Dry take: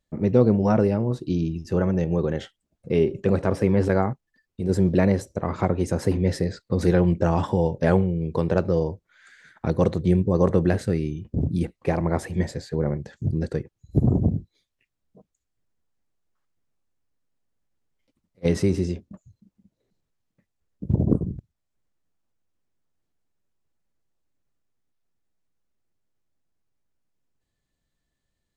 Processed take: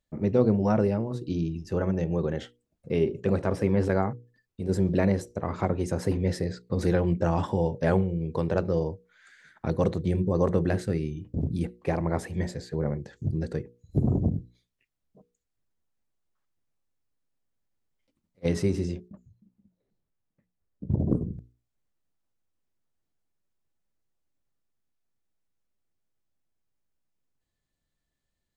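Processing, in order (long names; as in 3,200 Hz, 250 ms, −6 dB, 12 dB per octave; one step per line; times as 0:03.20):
mains-hum notches 60/120/180/240/300/360/420/480 Hz
0:19.08–0:21.33: one half of a high-frequency compander decoder only
level −3.5 dB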